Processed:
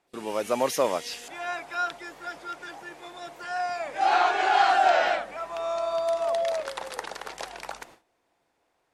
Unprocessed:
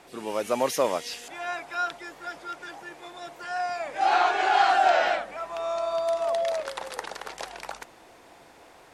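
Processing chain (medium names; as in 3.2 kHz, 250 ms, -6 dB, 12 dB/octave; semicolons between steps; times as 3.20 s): gate with hold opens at -39 dBFS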